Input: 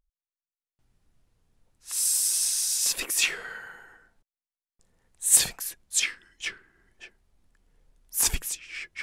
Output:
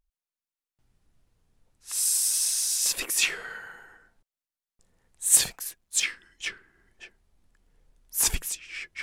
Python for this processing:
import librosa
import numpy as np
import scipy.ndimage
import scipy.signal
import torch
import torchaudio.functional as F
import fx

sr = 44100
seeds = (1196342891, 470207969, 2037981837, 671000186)

y = fx.law_mismatch(x, sr, coded='A', at=(5.24, 6.04))
y = fx.vibrato(y, sr, rate_hz=0.49, depth_cents=9.3)